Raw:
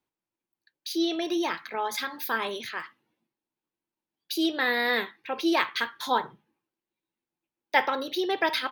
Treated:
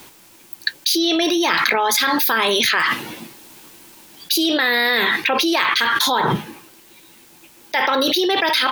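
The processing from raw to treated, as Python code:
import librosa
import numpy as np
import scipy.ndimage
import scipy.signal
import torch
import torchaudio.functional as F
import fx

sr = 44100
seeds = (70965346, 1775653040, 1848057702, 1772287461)

y = fx.rider(x, sr, range_db=10, speed_s=2.0)
y = fx.high_shelf(y, sr, hz=2200.0, db=8.0)
y = fx.env_flatten(y, sr, amount_pct=100)
y = y * 10.0 ** (-1.5 / 20.0)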